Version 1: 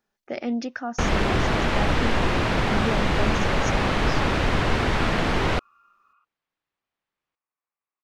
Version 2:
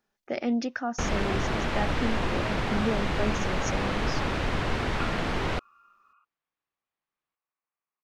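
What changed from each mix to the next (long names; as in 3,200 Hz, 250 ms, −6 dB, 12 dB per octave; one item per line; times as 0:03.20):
first sound −6.0 dB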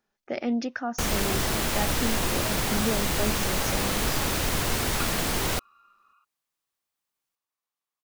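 first sound: remove low-pass filter 2,700 Hz 12 dB per octave
second sound: remove Butterworth low-pass 2,700 Hz 72 dB per octave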